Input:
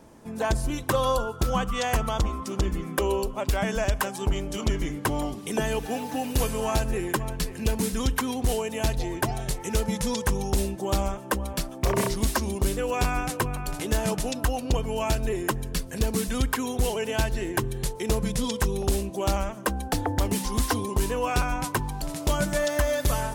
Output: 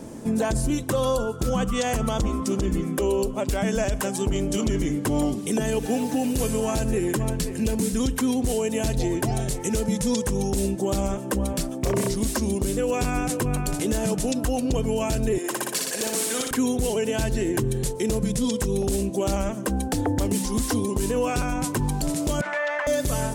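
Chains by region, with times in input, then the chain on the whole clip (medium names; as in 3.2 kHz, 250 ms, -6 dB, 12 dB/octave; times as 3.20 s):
15.38–16.51 s: high-pass 560 Hz + flutter echo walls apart 10.3 m, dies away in 0.85 s
22.41–22.87 s: Chebyshev band-pass 890–2200 Hz + level flattener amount 70%
whole clip: ten-band graphic EQ 125 Hz +4 dB, 250 Hz +7 dB, 500 Hz +4 dB, 1 kHz -3 dB, 8 kHz +7 dB; gain riding 0.5 s; peak limiter -16 dBFS; trim +1 dB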